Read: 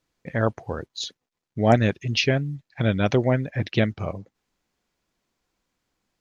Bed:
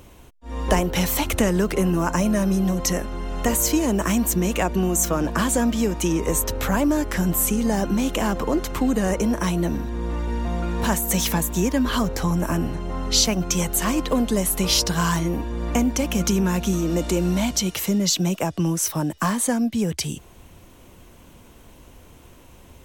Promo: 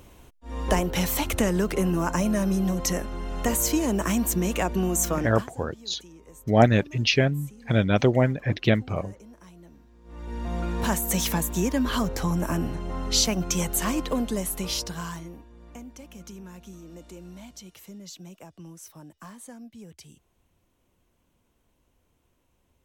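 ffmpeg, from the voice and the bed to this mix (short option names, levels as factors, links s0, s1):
-filter_complex "[0:a]adelay=4900,volume=1.06[s0];[1:a]volume=10,afade=t=out:st=5.13:d=0.35:silence=0.0668344,afade=t=in:st=10.04:d=0.56:silence=0.0668344,afade=t=out:st=13.79:d=1.66:silence=0.11885[s1];[s0][s1]amix=inputs=2:normalize=0"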